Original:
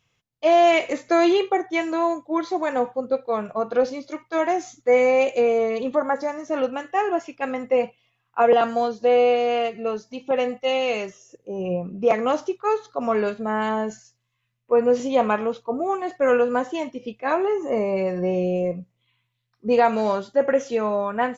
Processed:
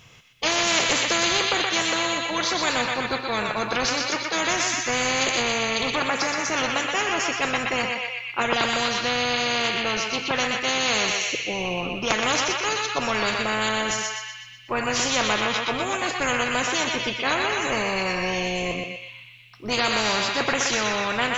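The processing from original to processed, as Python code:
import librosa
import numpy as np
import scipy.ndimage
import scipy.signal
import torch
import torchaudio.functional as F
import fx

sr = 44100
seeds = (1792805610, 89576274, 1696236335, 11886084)

p1 = x + fx.echo_banded(x, sr, ms=123, feedback_pct=67, hz=3000.0, wet_db=-4.0, dry=0)
y = fx.spectral_comp(p1, sr, ratio=4.0)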